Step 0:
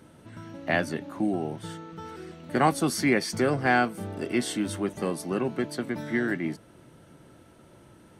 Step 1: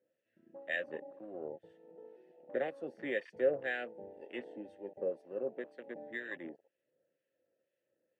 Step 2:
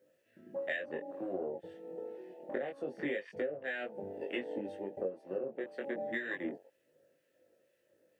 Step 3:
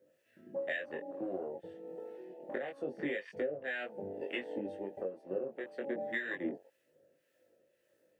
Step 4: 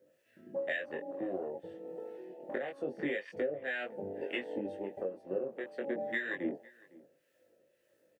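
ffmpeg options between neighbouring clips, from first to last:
-filter_complex "[0:a]asplit=3[s0][s1][s2];[s0]bandpass=f=530:t=q:w=8,volume=1[s3];[s1]bandpass=f=1840:t=q:w=8,volume=0.501[s4];[s2]bandpass=f=2480:t=q:w=8,volume=0.355[s5];[s3][s4][s5]amix=inputs=3:normalize=0,afwtdn=0.00398,acrossover=split=1500[s6][s7];[s6]aeval=exprs='val(0)*(1-0.7/2+0.7/2*cos(2*PI*2*n/s))':c=same[s8];[s7]aeval=exprs='val(0)*(1-0.7/2-0.7/2*cos(2*PI*2*n/s))':c=same[s9];[s8][s9]amix=inputs=2:normalize=0,volume=1.41"
-af "acompressor=threshold=0.00631:ratio=16,flanger=delay=19.5:depth=2.4:speed=0.26,volume=5.01"
-filter_complex "[0:a]acrossover=split=770[s0][s1];[s0]aeval=exprs='val(0)*(1-0.5/2+0.5/2*cos(2*PI*1.7*n/s))':c=same[s2];[s1]aeval=exprs='val(0)*(1-0.5/2-0.5/2*cos(2*PI*1.7*n/s))':c=same[s3];[s2][s3]amix=inputs=2:normalize=0,volume=1.26"
-filter_complex "[0:a]asplit=2[s0][s1];[s1]adelay=507.3,volume=0.0794,highshelf=f=4000:g=-11.4[s2];[s0][s2]amix=inputs=2:normalize=0,volume=1.19"

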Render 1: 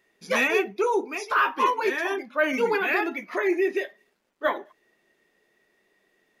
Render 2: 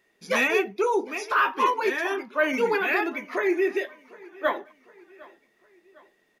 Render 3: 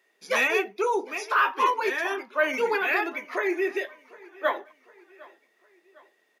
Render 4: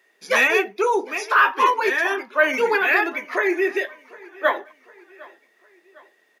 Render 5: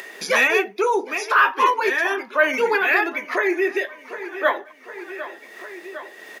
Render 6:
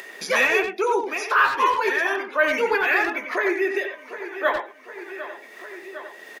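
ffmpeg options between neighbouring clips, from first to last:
-af "aecho=1:1:755|1510|2265:0.0708|0.034|0.0163"
-af "highpass=390"
-af "equalizer=f=1700:w=4.7:g=4,volume=1.78"
-af "acompressor=mode=upward:threshold=0.1:ratio=2.5"
-filter_complex "[0:a]asplit=2[s0][s1];[s1]adelay=90,highpass=300,lowpass=3400,asoftclip=type=hard:threshold=0.211,volume=0.501[s2];[s0][s2]amix=inputs=2:normalize=0,volume=0.75"

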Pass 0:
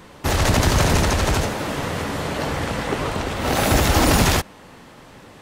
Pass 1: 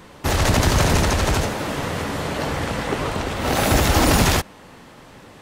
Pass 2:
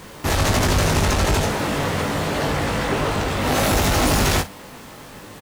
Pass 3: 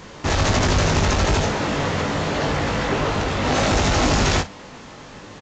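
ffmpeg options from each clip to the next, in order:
-af anull
-af "acrusher=bits=7:mix=0:aa=0.000001,asoftclip=type=tanh:threshold=0.112,aecho=1:1:20|56:0.562|0.178,volume=1.41"
-af "aresample=16000,aresample=44100"

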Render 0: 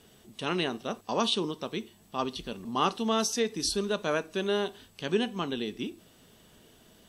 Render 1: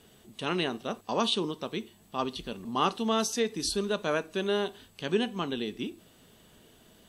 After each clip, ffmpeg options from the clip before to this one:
-af "equalizer=f=5500:t=o:w=0.23:g=-4.5"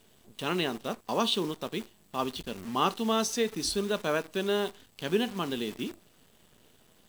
-af "acrusher=bits=8:dc=4:mix=0:aa=0.000001"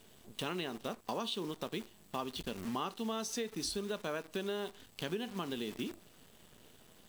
-af "acompressor=threshold=0.0158:ratio=6,volume=1.12"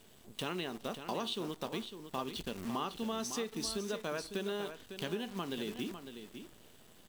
-af "aecho=1:1:553:0.335"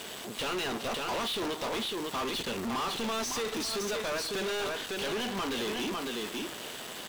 -filter_complex "[0:a]asplit=2[s0][s1];[s1]highpass=f=720:p=1,volume=70.8,asoftclip=type=tanh:threshold=0.0944[s2];[s0][s2]amix=inputs=2:normalize=0,lowpass=f=5600:p=1,volume=0.501,volume=0.562"

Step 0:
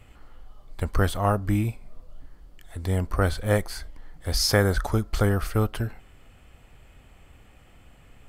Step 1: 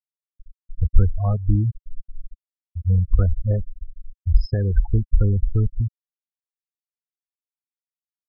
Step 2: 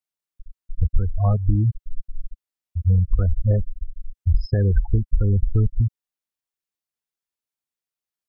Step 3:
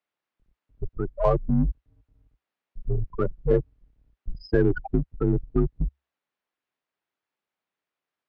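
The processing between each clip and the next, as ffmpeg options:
-af "afftfilt=real='re*gte(hypot(re,im),0.251)':imag='im*gte(hypot(re,im),0.251)':win_size=1024:overlap=0.75,alimiter=limit=0.178:level=0:latency=1:release=400,aemphasis=mode=reproduction:type=riaa,volume=0.562"
-af "acompressor=threshold=0.141:ratio=6,volume=1.58"
-filter_complex "[0:a]highpass=270,lowpass=2400,asplit=2[s0][s1];[s1]asoftclip=type=tanh:threshold=0.0211,volume=0.501[s2];[s0][s2]amix=inputs=2:normalize=0,afreqshift=-69,volume=2.24"

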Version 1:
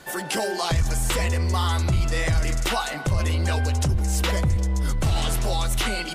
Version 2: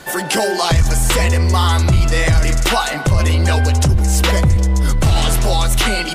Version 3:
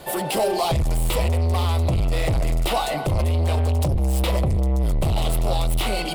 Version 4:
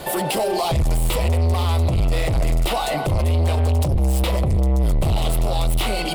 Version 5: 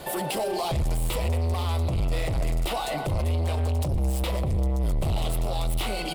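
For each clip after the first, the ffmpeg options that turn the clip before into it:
-af "acontrast=37,volume=1.5"
-af "asoftclip=type=tanh:threshold=0.133,equalizer=f=250:t=o:w=0.67:g=-4,equalizer=f=630:t=o:w=0.67:g=5,equalizer=f=1600:t=o:w=0.67:g=-12,equalizer=f=6300:t=o:w=0.67:g=-11,aeval=exprs='sgn(val(0))*max(abs(val(0))-0.00188,0)':c=same"
-af "alimiter=limit=0.0794:level=0:latency=1:release=332,volume=2.37"
-af "aecho=1:1:115|230|345|460|575:0.112|0.064|0.0365|0.0208|0.0118,volume=0.473"

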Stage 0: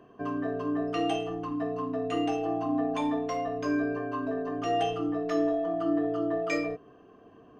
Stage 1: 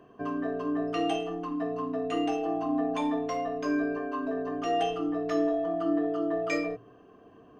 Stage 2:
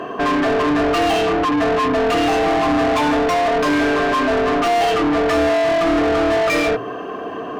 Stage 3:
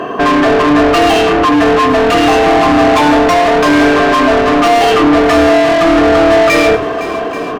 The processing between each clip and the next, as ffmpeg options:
-af "bandreject=f=117.7:t=h:w=4,bandreject=f=235.4:t=h:w=4,bandreject=f=353.1:t=h:w=4"
-filter_complex "[0:a]asplit=2[s0][s1];[s1]highpass=f=720:p=1,volume=44.7,asoftclip=type=tanh:threshold=0.15[s2];[s0][s2]amix=inputs=2:normalize=0,lowpass=f=2800:p=1,volume=0.501,volume=2"
-af "aecho=1:1:105|510|833:0.188|0.188|0.15,volume=2.51"

